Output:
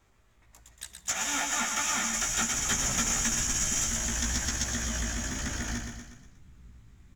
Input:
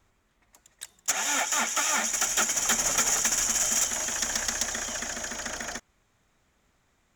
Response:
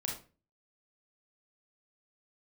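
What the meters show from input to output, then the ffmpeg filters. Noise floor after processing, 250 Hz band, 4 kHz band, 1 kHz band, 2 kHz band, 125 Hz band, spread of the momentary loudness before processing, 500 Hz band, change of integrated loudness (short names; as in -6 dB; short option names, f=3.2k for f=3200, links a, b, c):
-63 dBFS, +5.0 dB, -2.5 dB, -3.5 dB, -2.5 dB, +13.0 dB, 11 LU, -5.0 dB, -3.0 dB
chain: -filter_complex "[0:a]asplit=2[a][b];[1:a]atrim=start_sample=2205[c];[b][c]afir=irnorm=-1:irlink=0,volume=-20dB[d];[a][d]amix=inputs=2:normalize=0,acrossover=split=9400[e][f];[f]acompressor=threshold=-40dB:ratio=4:attack=1:release=60[g];[e][g]amix=inputs=2:normalize=0,aecho=1:1:120|240|360|480|600:0.473|0.218|0.1|0.0461|0.0212,asubboost=boost=9.5:cutoff=190,asplit=2[h][i];[i]acompressor=threshold=-35dB:ratio=6,volume=1dB[j];[h][j]amix=inputs=2:normalize=0,flanger=delay=15:depth=2.6:speed=1.1,volume=-3dB"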